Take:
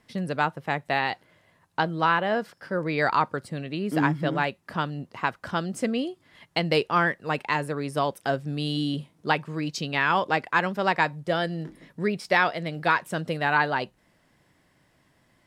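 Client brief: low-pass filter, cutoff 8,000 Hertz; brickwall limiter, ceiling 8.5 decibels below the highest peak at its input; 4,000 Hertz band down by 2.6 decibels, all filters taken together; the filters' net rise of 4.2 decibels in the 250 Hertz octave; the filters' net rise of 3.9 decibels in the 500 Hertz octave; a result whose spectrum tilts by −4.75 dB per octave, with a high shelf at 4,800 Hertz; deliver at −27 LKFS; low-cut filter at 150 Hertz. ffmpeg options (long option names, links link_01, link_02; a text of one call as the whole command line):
ffmpeg -i in.wav -af "highpass=150,lowpass=8000,equalizer=frequency=250:width_type=o:gain=5.5,equalizer=frequency=500:width_type=o:gain=3.5,equalizer=frequency=4000:width_type=o:gain=-6,highshelf=frequency=4800:gain=5.5,volume=0.5dB,alimiter=limit=-13.5dB:level=0:latency=1" out.wav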